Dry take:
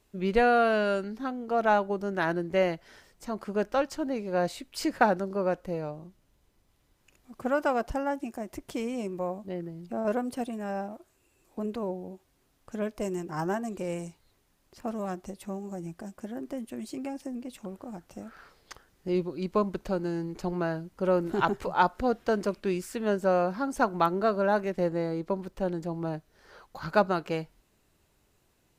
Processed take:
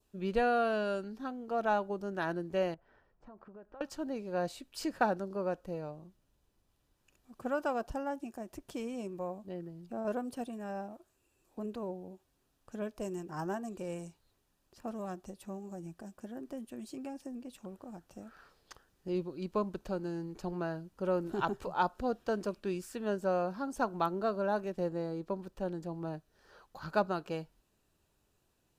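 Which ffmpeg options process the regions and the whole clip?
-filter_complex "[0:a]asettb=1/sr,asplit=3[a][b][c];[a]atrim=end=2.744[d];[b]atrim=start=2.74:end=3.81,asetpts=PTS-STARTPTS,afade=t=in:d=0.004:c=qsin,afade=t=out:st=1.066:d=0.004:c=qsin,lowpass=1.3k,equalizer=f=250:t=o:w=2.5:g=-4.5,acompressor=threshold=-43dB:ratio=5:attack=3.2:release=140:knee=1:detection=peak[e];[c]atrim=start=3.806[f];[d][e]acrossfade=d=0.004:c1=hsin:c2=qsin[g];[g][f]acrossfade=d=0.004:c1=qsin:c2=hsin,bandreject=f=2.1k:w=7.5,adynamicequalizer=threshold=0.00447:dfrequency=1900:dqfactor=2:tfrequency=1900:tqfactor=2:attack=5:release=100:ratio=0.375:range=2:mode=cutabove:tftype=bell,volume=-6.5dB"

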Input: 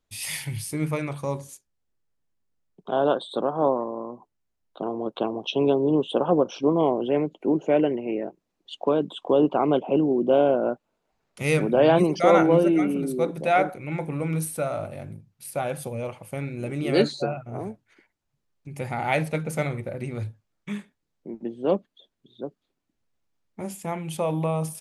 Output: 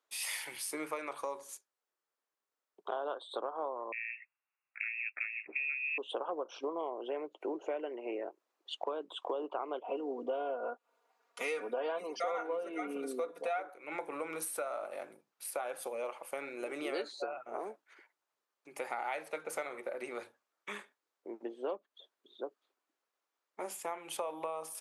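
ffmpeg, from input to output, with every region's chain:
-filter_complex "[0:a]asettb=1/sr,asplit=3[a][b][c];[a]atrim=end=3.924[d];[b]atrim=start=3.92:end=5.98,asetpts=PTS-STARTPTS,afade=t=in:d=0.004:c=qsin,afade=t=out:st=2.056:d=0.004:c=qsin,highpass=f=240:p=1,lowpass=f=2.5k:t=q:w=0.5098,lowpass=f=2.5k:t=q:w=0.6013,lowpass=f=2.5k:t=q:w=0.9,lowpass=f=2.5k:t=q:w=2.563,afreqshift=-2900[e];[c]atrim=start=5.976[f];[d][e]acrossfade=d=0.004:c1=hsin:c2=qsin[g];[g][f]acrossfade=d=0.004:c1=qsin:c2=hsin,asettb=1/sr,asplit=3[h][i][j];[h]atrim=end=9.844[k];[i]atrim=start=9.84:end=13.6,asetpts=PTS-STARTPTS,afade=t=in:d=0.004:c=qsin,afade=t=out:st=3.756:d=0.004:c=qsin,acrossover=split=9300[l][m];[m]acompressor=threshold=-53dB:ratio=4:attack=1:release=60[n];[l][n]amix=inputs=2:normalize=0,aecho=1:1:4.2:0.85,atrim=end_sample=165816[o];[j]atrim=start=13.596[p];[k][o]acrossfade=d=0.004:c1=hsin:c2=qsin[q];[q][p]acrossfade=d=0.004:c1=qsin:c2=hsin,highpass=f=370:w=0.5412,highpass=f=370:w=1.3066,equalizer=f=1.2k:w=1.3:g=7,acompressor=threshold=-32dB:ratio=6,volume=-3dB"

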